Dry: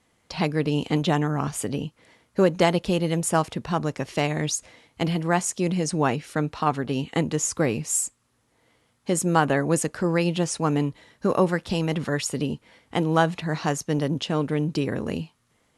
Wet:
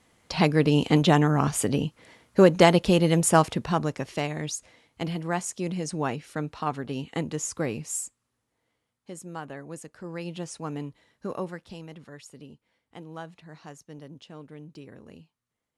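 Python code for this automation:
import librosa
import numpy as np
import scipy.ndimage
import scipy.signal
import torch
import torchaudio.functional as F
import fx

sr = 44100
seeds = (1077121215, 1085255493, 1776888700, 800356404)

y = fx.gain(x, sr, db=fx.line((3.46, 3.0), (4.33, -6.0), (7.83, -6.0), (9.19, -17.5), (9.89, -17.5), (10.34, -11.0), (11.31, -11.0), (12.04, -19.5)))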